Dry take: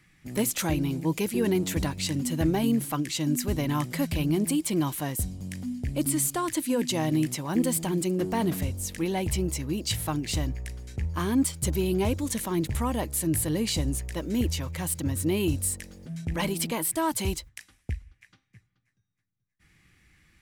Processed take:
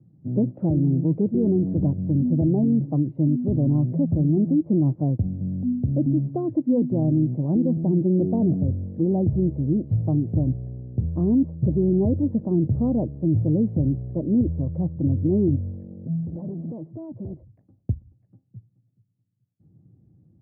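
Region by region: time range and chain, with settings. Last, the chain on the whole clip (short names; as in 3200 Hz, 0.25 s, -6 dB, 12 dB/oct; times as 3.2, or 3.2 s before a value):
16.24–17.54 inverse Chebyshev low-pass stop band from 12000 Hz + compressor 2.5:1, threshold -36 dBFS + hard clip -37 dBFS
whole clip: Chebyshev band-pass 110–660 Hz, order 3; tilt -4.5 dB/oct; limiter -13 dBFS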